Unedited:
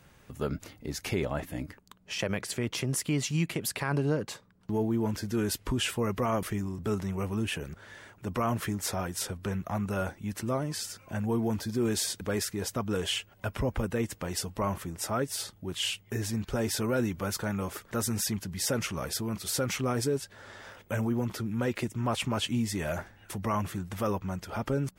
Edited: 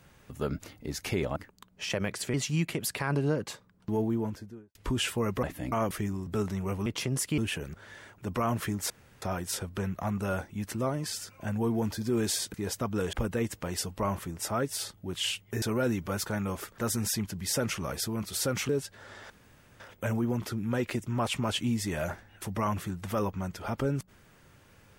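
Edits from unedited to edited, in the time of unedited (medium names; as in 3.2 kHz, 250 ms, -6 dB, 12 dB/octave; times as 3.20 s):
1.36–1.65 s: move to 6.24 s
2.63–3.15 s: move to 7.38 s
4.79–5.56 s: studio fade out
8.90 s: insert room tone 0.32 s
12.22–12.49 s: delete
13.08–13.72 s: delete
16.21–16.75 s: delete
19.82–20.07 s: delete
20.68 s: insert room tone 0.50 s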